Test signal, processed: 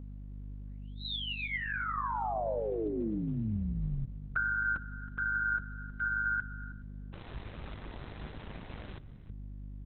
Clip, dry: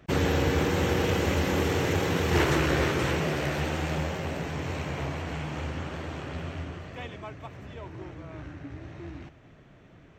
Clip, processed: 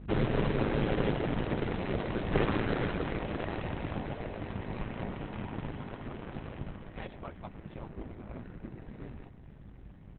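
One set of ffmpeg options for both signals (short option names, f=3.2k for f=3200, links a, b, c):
-filter_complex "[0:a]lowpass=f=1.3k:p=1,aemphasis=mode=production:type=50kf,asplit=2[a][b];[b]alimiter=limit=-24dB:level=0:latency=1:release=30,volume=-2.5dB[c];[a][c]amix=inputs=2:normalize=0,aeval=exprs='val(0)*sin(2*PI*55*n/s)':c=same,aeval=exprs='val(0)+0.00891*(sin(2*PI*50*n/s)+sin(2*PI*2*50*n/s)/2+sin(2*PI*3*50*n/s)/3+sin(2*PI*4*50*n/s)/4+sin(2*PI*5*50*n/s)/5)':c=same,acontrast=24,aecho=1:1:320:0.133,volume=-6.5dB" -ar 48000 -c:a libopus -b:a 6k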